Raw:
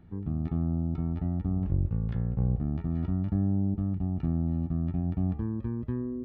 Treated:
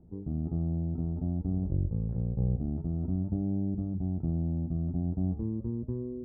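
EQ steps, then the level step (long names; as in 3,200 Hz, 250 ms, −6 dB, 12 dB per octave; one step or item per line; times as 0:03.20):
transistor ladder low-pass 760 Hz, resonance 25%
mains-hum notches 50/100/150/200/250 Hz
+4.5 dB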